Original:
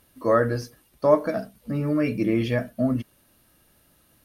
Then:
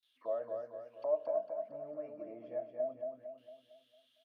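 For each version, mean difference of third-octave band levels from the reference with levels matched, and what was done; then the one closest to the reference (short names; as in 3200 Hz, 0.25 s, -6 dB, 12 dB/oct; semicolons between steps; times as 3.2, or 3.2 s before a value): 11.0 dB: gate with hold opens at -51 dBFS; compressor 1.5:1, threshold -49 dBFS, peak gain reduction 13 dB; auto-wah 650–3800 Hz, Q 11, down, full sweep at -35.5 dBFS; on a send: feedback echo 0.227 s, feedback 46%, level -4.5 dB; on the sum: gain +5 dB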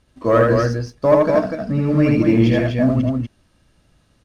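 6.5 dB: LPF 7700 Hz 24 dB/oct; low shelf 140 Hz +9 dB; sample leveller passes 1; on a send: loudspeakers at several distances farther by 27 m -2 dB, 84 m -4 dB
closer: second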